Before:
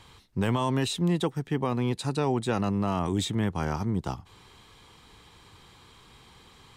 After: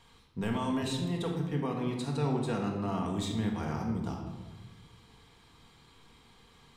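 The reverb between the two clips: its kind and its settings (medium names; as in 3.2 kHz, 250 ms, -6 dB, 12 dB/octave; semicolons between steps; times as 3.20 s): simulated room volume 860 m³, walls mixed, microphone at 1.7 m; trim -9 dB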